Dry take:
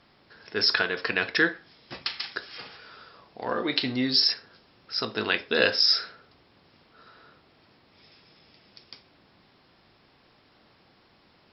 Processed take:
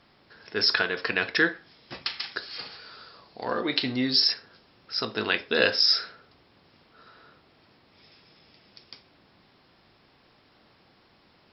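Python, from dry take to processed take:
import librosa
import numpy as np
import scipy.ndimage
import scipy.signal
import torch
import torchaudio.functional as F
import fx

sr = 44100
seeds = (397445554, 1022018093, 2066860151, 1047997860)

y = fx.peak_eq(x, sr, hz=4400.0, db=9.5, octaves=0.32, at=(2.37, 3.61))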